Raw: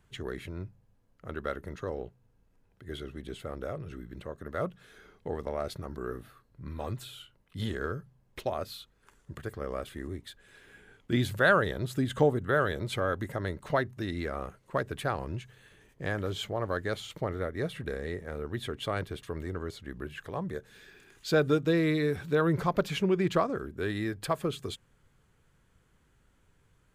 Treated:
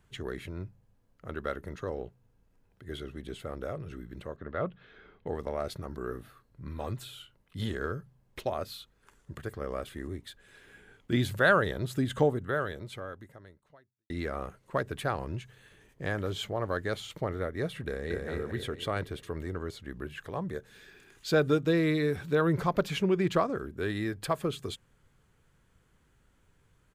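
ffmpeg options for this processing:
-filter_complex "[0:a]asettb=1/sr,asplit=3[s0][s1][s2];[s0]atrim=end=4.364[s3];[s1]atrim=start=4.36:end=5.27,asetpts=PTS-STARTPTS,afade=t=in:d=0.004:c=qsin,afade=t=out:st=0.906:d=0.004:c=qsin,lowpass=f=3700:w=0.5412,lowpass=f=3700:w=1.3066[s4];[s2]atrim=start=5.266[s5];[s3][s4]acrossfade=d=0.004:c1=hsin:c2=qsin[s6];[s6][s5]acrossfade=d=0.004:c1=qsin:c2=hsin,asplit=2[s7][s8];[s8]afade=t=in:st=17.87:d=0.01,afade=t=out:st=18.28:d=0.01,aecho=0:1:230|460|690|920|1150|1380|1610:0.794328|0.397164|0.198582|0.099291|0.0496455|0.0248228|0.0124114[s9];[s7][s9]amix=inputs=2:normalize=0,asplit=2[s10][s11];[s10]atrim=end=14.1,asetpts=PTS-STARTPTS,afade=t=out:st=12.13:d=1.97:c=qua[s12];[s11]atrim=start=14.1,asetpts=PTS-STARTPTS,afade=t=in:d=0.004:c=hsin[s13];[s12][s13]concat=n=2:v=0:a=1"

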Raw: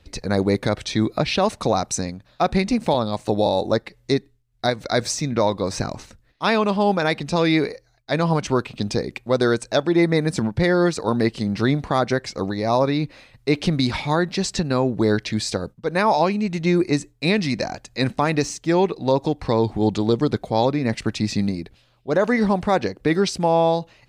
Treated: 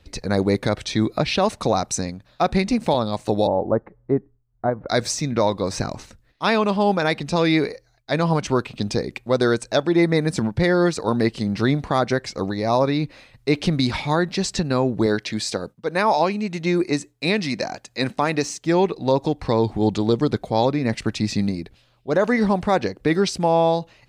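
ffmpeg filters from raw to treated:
-filter_complex "[0:a]asplit=3[s0][s1][s2];[s0]afade=t=out:st=3.46:d=0.02[s3];[s1]lowpass=f=1300:w=0.5412,lowpass=f=1300:w=1.3066,afade=t=in:st=3.46:d=0.02,afade=t=out:st=4.88:d=0.02[s4];[s2]afade=t=in:st=4.88:d=0.02[s5];[s3][s4][s5]amix=inputs=3:normalize=0,asettb=1/sr,asplit=3[s6][s7][s8];[s6]atrim=end=15.064[s9];[s7]atrim=start=15.06:end=18.65,asetpts=PTS-STARTPTS,afade=t=in:d=0.004:c=qsin,afade=t=out:st=3.586:d=0.004:c=qsin,highpass=f=200:p=1[s10];[s8]atrim=start=18.646[s11];[s9][s10]acrossfade=d=0.004:c1=hsin:c2=qsin[s12];[s12][s11]acrossfade=d=0.004:c1=qsin:c2=hsin"

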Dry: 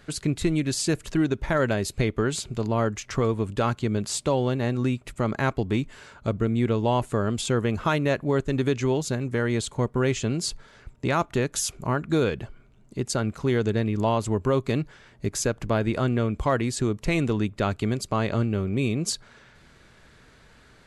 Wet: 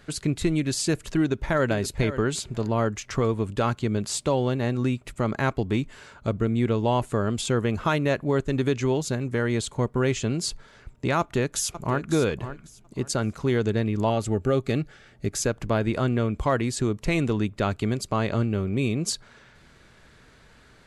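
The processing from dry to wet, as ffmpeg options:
-filter_complex "[0:a]asplit=2[s0][s1];[s1]afade=t=in:st=1.18:d=0.01,afade=t=out:st=1.66:d=0.01,aecho=0:1:520|1040:0.237137|0.0355706[s2];[s0][s2]amix=inputs=2:normalize=0,asplit=2[s3][s4];[s4]afade=t=in:st=11.19:d=0.01,afade=t=out:st=12.11:d=0.01,aecho=0:1:550|1100|1650:0.251189|0.0627972|0.0156993[s5];[s3][s5]amix=inputs=2:normalize=0,asettb=1/sr,asplit=3[s6][s7][s8];[s6]atrim=end=14.104[s9];[s7]atrim=start=14.1:end=15.42,asetpts=PTS-STARTPTS,afade=t=in:d=0.004:c=qsin,afade=t=out:st=1.316:d=0.004:c=qsin,asuperstop=centerf=1000:order=12:qfactor=5.1[s10];[s8]atrim=start=15.416[s11];[s9][s10]acrossfade=d=0.004:c1=hsin:c2=qsin[s12];[s12][s11]acrossfade=d=0.004:c1=qsin:c2=hsin"

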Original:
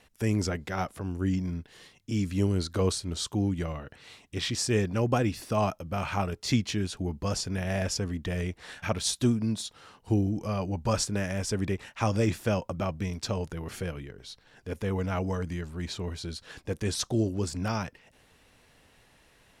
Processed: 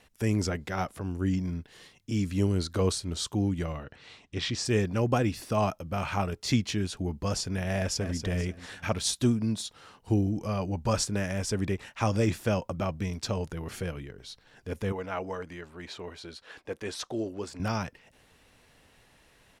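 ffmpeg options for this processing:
-filter_complex "[0:a]asplit=3[s0][s1][s2];[s0]afade=t=out:st=3.84:d=0.02[s3];[s1]lowpass=6000,afade=t=in:st=3.84:d=0.02,afade=t=out:st=4.64:d=0.02[s4];[s2]afade=t=in:st=4.64:d=0.02[s5];[s3][s4][s5]amix=inputs=3:normalize=0,asplit=2[s6][s7];[s7]afade=t=in:st=7.76:d=0.01,afade=t=out:st=8.18:d=0.01,aecho=0:1:240|480|720|960:0.375837|0.150335|0.060134|0.0240536[s8];[s6][s8]amix=inputs=2:normalize=0,asettb=1/sr,asplit=3[s9][s10][s11];[s9]atrim=end=14.924[s12];[s10]atrim=start=14.92:end=17.6,asetpts=PTS-STARTPTS,afade=t=in:d=0.004:c=qsin,afade=t=out:st=2.676:d=0.004:c=qsin,bass=f=250:g=-15,treble=f=4000:g=-9[s13];[s11]atrim=start=17.596[s14];[s12][s13]acrossfade=d=0.004:c1=hsin:c2=qsin[s15];[s15][s14]acrossfade=d=0.004:c1=qsin:c2=hsin"

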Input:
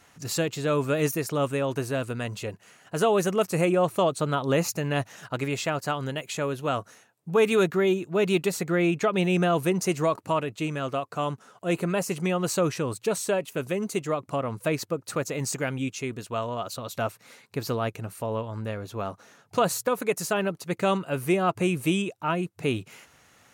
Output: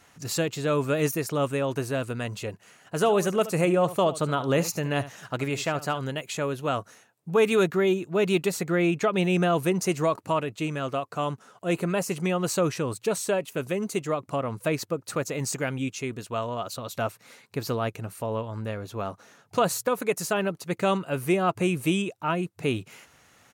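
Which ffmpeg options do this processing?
-filter_complex "[0:a]asplit=3[s0][s1][s2];[s0]afade=t=out:st=3.02:d=0.02[s3];[s1]aecho=1:1:73:0.168,afade=t=in:st=3.02:d=0.02,afade=t=out:st=5.98:d=0.02[s4];[s2]afade=t=in:st=5.98:d=0.02[s5];[s3][s4][s5]amix=inputs=3:normalize=0"

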